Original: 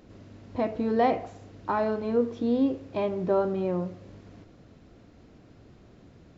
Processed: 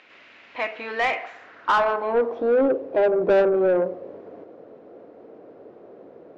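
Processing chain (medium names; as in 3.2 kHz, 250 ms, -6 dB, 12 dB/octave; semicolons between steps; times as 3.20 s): band-pass sweep 2.4 kHz -> 480 Hz, 1.13–2.72 s; overdrive pedal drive 21 dB, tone 2.2 kHz, clips at -17 dBFS; trim +7 dB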